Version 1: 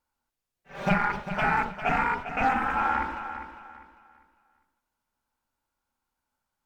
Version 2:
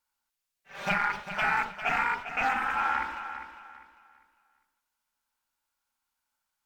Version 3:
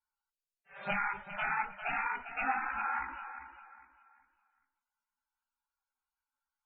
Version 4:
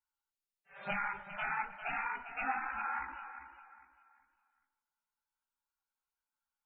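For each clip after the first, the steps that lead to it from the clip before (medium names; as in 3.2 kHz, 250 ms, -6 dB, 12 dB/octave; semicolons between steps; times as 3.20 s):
tilt shelf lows -7.5 dB, about 860 Hz; trim -4 dB
loudest bins only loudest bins 64; chorus voices 6, 0.83 Hz, delay 17 ms, depth 2.8 ms; trim -3 dB
tape echo 152 ms, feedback 59%, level -17 dB, low-pass 2 kHz; trim -3 dB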